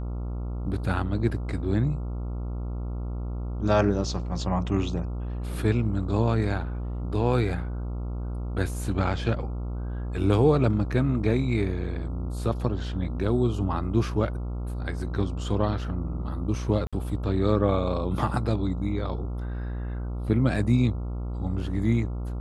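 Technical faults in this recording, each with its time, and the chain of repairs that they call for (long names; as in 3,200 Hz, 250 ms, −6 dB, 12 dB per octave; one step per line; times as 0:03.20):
mains buzz 60 Hz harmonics 23 −31 dBFS
0:16.87–0:16.93: drop-out 56 ms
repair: hum removal 60 Hz, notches 23
repair the gap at 0:16.87, 56 ms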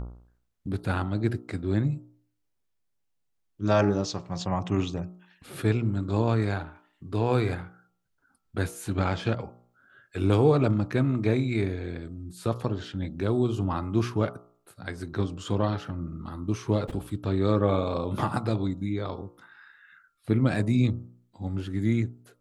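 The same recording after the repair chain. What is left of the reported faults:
none of them is left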